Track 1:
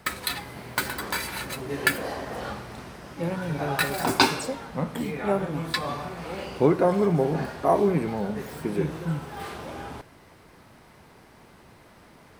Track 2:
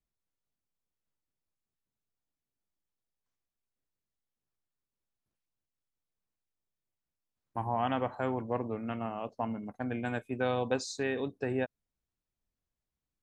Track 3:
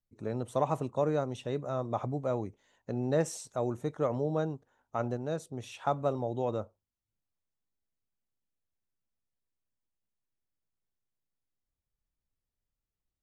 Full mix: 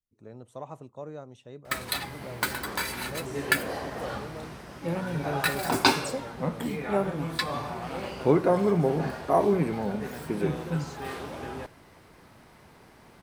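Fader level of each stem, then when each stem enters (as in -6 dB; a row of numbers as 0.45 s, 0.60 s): -1.5 dB, -9.0 dB, -11.0 dB; 1.65 s, 0.00 s, 0.00 s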